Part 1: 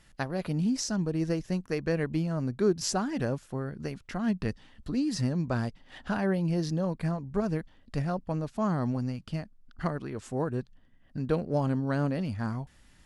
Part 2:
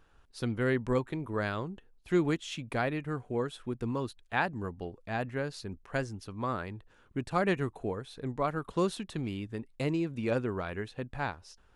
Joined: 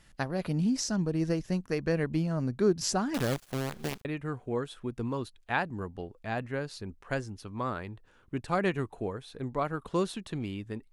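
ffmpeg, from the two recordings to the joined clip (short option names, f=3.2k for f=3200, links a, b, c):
-filter_complex "[0:a]asettb=1/sr,asplit=3[a][b][c];[a]atrim=end=3.144[d];[b]atrim=start=3.14:end=4.05,asetpts=PTS-STARTPTS,afade=t=in:d=0.004:c=qsin,afade=t=out:st=0.906:d=0.004:c=qsin,acrusher=bits=6:dc=4:mix=0:aa=0.000001[e];[c]atrim=start=4.046[f];[d][e]acrossfade=d=0.004:c1=hsin:c2=qsin[g];[g][f]acrossfade=d=0.004:c1=qsin:c2=hsin,apad=whole_dur=10.92,atrim=end=10.92,atrim=end=4.052[h];[1:a]atrim=start=2.878:end=9.75[i];[h][i]acrossfade=d=0.004:c1=hsin:c2=hsin"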